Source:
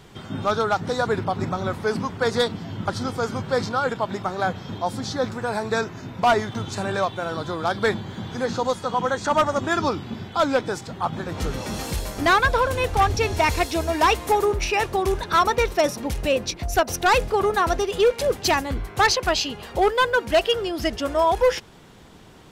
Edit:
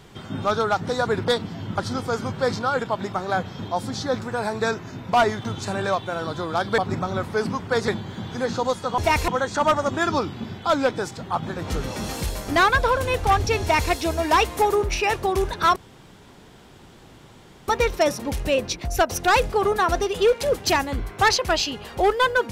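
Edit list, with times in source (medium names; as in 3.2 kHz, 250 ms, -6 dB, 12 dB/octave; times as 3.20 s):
1.28–2.38 s: move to 7.88 s
13.31–13.61 s: copy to 8.98 s
15.46 s: insert room tone 1.92 s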